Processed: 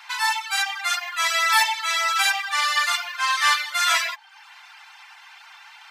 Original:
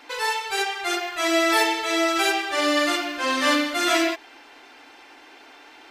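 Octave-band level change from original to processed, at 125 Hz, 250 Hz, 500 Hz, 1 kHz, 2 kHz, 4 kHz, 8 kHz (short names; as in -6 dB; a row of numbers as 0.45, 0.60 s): n/a, under -40 dB, -17.0 dB, +1.5 dB, +2.5 dB, +2.0 dB, +3.5 dB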